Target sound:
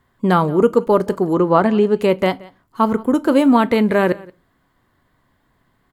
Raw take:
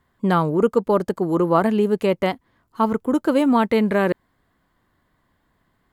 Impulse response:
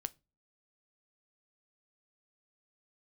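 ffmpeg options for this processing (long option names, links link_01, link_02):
-filter_complex "[0:a]asettb=1/sr,asplit=3[link_01][link_02][link_03];[link_01]atrim=end=1.334[link_04];[link_02]atrim=start=1.33:end=1.96,asetpts=PTS-STARTPTS,afade=type=in:duration=0.004:curve=qsin,afade=type=out:start_time=0.626:duration=0.004:curve=qsin,lowpass=6000[link_05];[link_03]atrim=start=1.956[link_06];[link_04][link_05]acrossfade=duration=0.004:curve1=hsin:curve2=qsin[link_07];[link_07][link_06]acrossfade=duration=0.004:curve1=qsin:curve2=hsin,aecho=1:1:176:0.075[link_08];[1:a]atrim=start_sample=2205[link_09];[link_08][link_09]afir=irnorm=-1:irlink=0,volume=5.5dB"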